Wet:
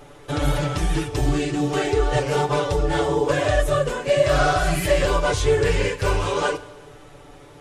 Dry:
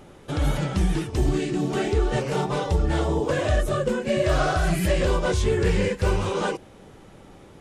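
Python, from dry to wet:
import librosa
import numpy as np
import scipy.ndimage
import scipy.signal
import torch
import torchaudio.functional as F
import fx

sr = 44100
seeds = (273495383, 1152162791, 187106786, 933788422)

y = fx.peak_eq(x, sr, hz=200.0, db=-13.5, octaves=0.63)
y = y + 0.73 * np.pad(y, (int(6.9 * sr / 1000.0), 0))[:len(y)]
y = fx.rev_schroeder(y, sr, rt60_s=1.3, comb_ms=30, drr_db=16.0)
y = y * 10.0 ** (2.5 / 20.0)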